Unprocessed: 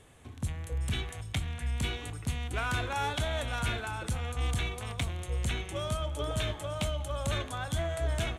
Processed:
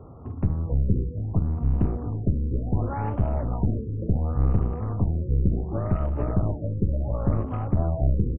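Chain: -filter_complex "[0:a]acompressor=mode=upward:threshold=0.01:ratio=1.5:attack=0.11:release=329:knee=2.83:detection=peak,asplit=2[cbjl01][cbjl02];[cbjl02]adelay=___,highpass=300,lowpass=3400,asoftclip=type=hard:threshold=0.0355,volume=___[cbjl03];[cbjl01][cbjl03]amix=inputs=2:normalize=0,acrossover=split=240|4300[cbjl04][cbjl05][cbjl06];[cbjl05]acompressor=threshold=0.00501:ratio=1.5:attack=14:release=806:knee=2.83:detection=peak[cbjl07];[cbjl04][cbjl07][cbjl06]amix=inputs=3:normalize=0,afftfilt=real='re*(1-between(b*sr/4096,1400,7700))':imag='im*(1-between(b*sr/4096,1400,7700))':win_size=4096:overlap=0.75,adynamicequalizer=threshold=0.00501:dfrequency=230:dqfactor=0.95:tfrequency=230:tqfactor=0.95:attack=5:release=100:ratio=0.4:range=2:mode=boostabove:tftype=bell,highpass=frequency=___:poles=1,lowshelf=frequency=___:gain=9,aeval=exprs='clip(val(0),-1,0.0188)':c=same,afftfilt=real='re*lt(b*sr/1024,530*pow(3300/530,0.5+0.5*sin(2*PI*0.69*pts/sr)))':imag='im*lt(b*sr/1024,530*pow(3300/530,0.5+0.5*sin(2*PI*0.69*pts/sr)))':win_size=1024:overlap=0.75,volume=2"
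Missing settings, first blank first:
300, 0.158, 68, 440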